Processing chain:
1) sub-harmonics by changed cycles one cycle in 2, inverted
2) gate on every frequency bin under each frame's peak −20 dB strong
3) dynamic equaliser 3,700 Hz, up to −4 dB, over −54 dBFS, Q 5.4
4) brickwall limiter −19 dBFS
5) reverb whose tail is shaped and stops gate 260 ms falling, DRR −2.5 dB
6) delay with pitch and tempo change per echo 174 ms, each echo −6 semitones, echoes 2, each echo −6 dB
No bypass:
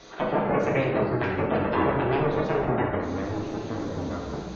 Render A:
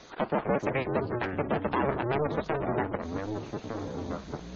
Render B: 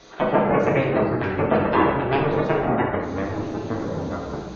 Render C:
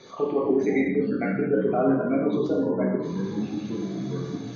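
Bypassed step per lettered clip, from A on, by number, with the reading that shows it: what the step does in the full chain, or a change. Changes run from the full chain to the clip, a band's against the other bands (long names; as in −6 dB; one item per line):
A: 5, change in integrated loudness −4.5 LU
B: 4, change in crest factor +1.5 dB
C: 1, 250 Hz band +8.0 dB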